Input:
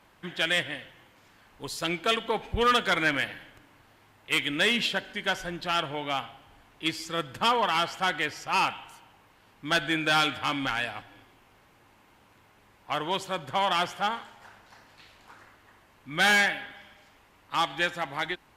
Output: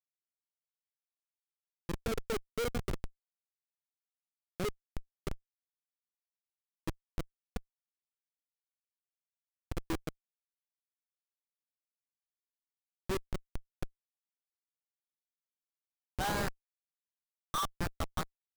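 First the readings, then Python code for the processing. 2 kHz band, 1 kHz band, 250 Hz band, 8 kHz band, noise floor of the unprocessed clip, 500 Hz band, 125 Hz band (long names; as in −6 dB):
−21.0 dB, −16.0 dB, −9.5 dB, −9.0 dB, −60 dBFS, −10.5 dB, −3.5 dB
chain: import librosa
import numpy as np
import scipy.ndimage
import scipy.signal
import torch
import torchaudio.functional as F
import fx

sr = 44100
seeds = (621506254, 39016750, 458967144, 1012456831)

y = fx.filter_sweep_bandpass(x, sr, from_hz=390.0, to_hz=1200.0, start_s=15.56, end_s=16.46, q=5.7)
y = fx.schmitt(y, sr, flips_db=-33.0)
y = y * librosa.db_to_amplitude(11.5)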